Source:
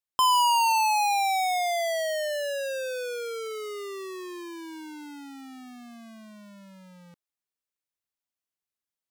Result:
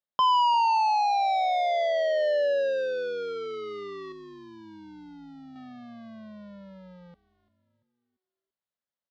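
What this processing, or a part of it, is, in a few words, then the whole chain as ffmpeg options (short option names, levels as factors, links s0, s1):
frequency-shifting delay pedal into a guitar cabinet: -filter_complex "[0:a]asplit=5[s0][s1][s2][s3][s4];[s1]adelay=341,afreqshift=-140,volume=0.141[s5];[s2]adelay=682,afreqshift=-280,volume=0.0596[s6];[s3]adelay=1023,afreqshift=-420,volume=0.0248[s7];[s4]adelay=1364,afreqshift=-560,volume=0.0105[s8];[s0][s5][s6][s7][s8]amix=inputs=5:normalize=0,highpass=79,equalizer=f=210:t=q:w=4:g=4,equalizer=f=340:t=q:w=4:g=-6,equalizer=f=570:t=q:w=4:g=7,equalizer=f=2500:t=q:w=4:g=-10,lowpass=f=4000:w=0.5412,lowpass=f=4000:w=1.3066,asettb=1/sr,asplit=3[s9][s10][s11];[s9]atrim=end=4.124[s12];[s10]atrim=start=4.12:end=5.56,asetpts=PTS-STARTPTS,afade=t=in:d=0.004:c=qsin,afade=t=out:st=1.436:d=0.004:c=qsin,equalizer=f=1700:t=o:w=2.9:g=-10.5[s13];[s11]atrim=start=5.556[s14];[s12][s13]acrossfade=d=0.004:c1=hsin:c2=qsin[s15];[s15][s14]acrossfade=d=0.004:c1=qsin:c2=hsin"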